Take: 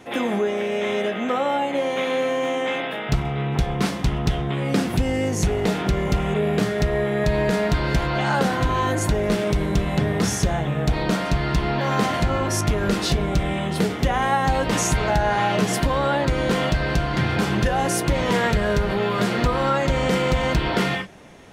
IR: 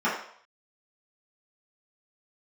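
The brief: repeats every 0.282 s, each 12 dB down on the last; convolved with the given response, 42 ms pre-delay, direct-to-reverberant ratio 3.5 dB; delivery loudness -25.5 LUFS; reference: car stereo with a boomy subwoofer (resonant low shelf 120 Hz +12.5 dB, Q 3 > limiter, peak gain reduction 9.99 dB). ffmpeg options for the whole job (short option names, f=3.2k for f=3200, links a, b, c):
-filter_complex "[0:a]aecho=1:1:282|564|846:0.251|0.0628|0.0157,asplit=2[a][b];[1:a]atrim=start_sample=2205,adelay=42[c];[b][c]afir=irnorm=-1:irlink=0,volume=-18dB[d];[a][d]amix=inputs=2:normalize=0,lowshelf=f=120:t=q:w=3:g=12.5,volume=-8dB,alimiter=limit=-14.5dB:level=0:latency=1"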